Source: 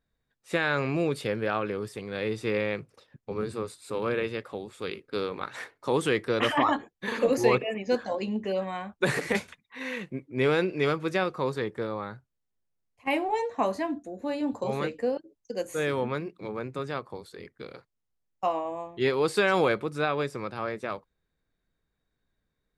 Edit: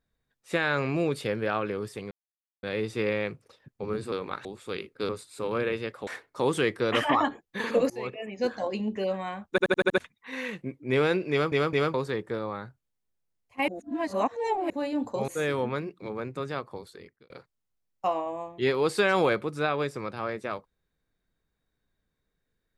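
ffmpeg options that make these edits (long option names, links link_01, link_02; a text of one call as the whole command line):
ffmpeg -i in.wav -filter_complex "[0:a]asplit=20[link_01][link_02][link_03][link_04][link_05][link_06][link_07][link_08][link_09][link_10][link_11][link_12][link_13][link_14][link_15][link_16][link_17][link_18][link_19][link_20];[link_01]atrim=end=2.11,asetpts=PTS-STARTPTS,afade=type=out:start_time=2.106:duration=0.004:curve=hsin,apad=pad_dur=0.52[link_21];[link_02]atrim=start=2.11:end=3.602,asetpts=PTS-STARTPTS,afade=type=in:duration=0.004:curve=hsin[link_22];[link_03]atrim=start=5.218:end=5.552[link_23];[link_04]atrim=start=4.578:end=5.222[link_24];[link_05]atrim=start=3.598:end=4.582[link_25];[link_06]atrim=start=5.548:end=7.38,asetpts=PTS-STARTPTS,afade=type=out:start_time=1.828:duration=0.004:curve=hsin:silence=0.0668344[link_26];[link_07]atrim=start=7.38:end=9.062,asetpts=PTS-STARTPTS,afade=type=in:duration=0.69:silence=0.0668344[link_27];[link_08]atrim=start=8.978:end=9.062[link_28];[link_09]atrim=start=8.978:end=9.062[link_29];[link_10]atrim=start=8.978:end=9.062[link_30];[link_11]atrim=start=8.978:end=9.062[link_31];[link_12]atrim=start=8.978:end=9.062[link_32];[link_13]atrim=start=9.458:end=11.002[link_33];[link_14]atrim=start=10.788:end=11.002[link_34];[link_15]atrim=start=10.788:end=11.002[link_35];[link_16]atrim=start=11.418:end=13.162[link_36];[link_17]atrim=start=13.158:end=14.182,asetpts=PTS-STARTPTS,areverse[link_37];[link_18]atrim=start=14.178:end=14.762[link_38];[link_19]atrim=start=15.668:end=17.69,asetpts=PTS-STARTPTS,afade=type=out:start_time=1.572:duration=0.45[link_39];[link_20]atrim=start=17.69,asetpts=PTS-STARTPTS,afade=type=in:duration=0.004:curve=hsin[link_40];[link_21][link_22]concat=n=2:v=0:a=1[link_41];[link_41][link_23]acrossfade=duration=0.004:curve1=hsin:curve2=hsin[link_42];[link_42][link_24]acrossfade=duration=0.004:curve1=hsin:curve2=hsin[link_43];[link_43][link_25]acrossfade=duration=0.004:curve1=hsin:curve2=hsin[link_44];[link_26][link_27]concat=n=2:v=0:a=1[link_45];[link_44][link_45]acrossfade=duration=0.004:curve1=hsin:curve2=hsin[link_46];[link_46][link_28]acrossfade=duration=0.004:curve1=hsin:curve2=hsin[link_47];[link_47][link_29]acrossfade=duration=0.004:curve1=hsin:curve2=hsin[link_48];[link_48][link_30]acrossfade=duration=0.004:curve1=hsin:curve2=hsin[link_49];[link_49][link_31]acrossfade=duration=0.004:curve1=hsin:curve2=hsin[link_50];[link_50][link_32]acrossfade=duration=0.004:curve1=hsin:curve2=hsin[link_51];[link_51][link_33]acrossfade=duration=0.004:curve1=hsin:curve2=hsin[link_52];[link_52][link_34]acrossfade=duration=0.004:curve1=hsin:curve2=hsin[link_53];[link_53][link_35]acrossfade=duration=0.004:curve1=hsin:curve2=hsin[link_54];[link_54][link_36]acrossfade=duration=0.004:curve1=hsin:curve2=hsin[link_55];[link_55][link_37]acrossfade=duration=0.004:curve1=hsin:curve2=hsin[link_56];[link_56][link_38]acrossfade=duration=0.004:curve1=hsin:curve2=hsin[link_57];[link_39][link_40]concat=n=2:v=0:a=1[link_58];[link_57][link_58]acrossfade=duration=0.004:curve1=hsin:curve2=hsin" out.wav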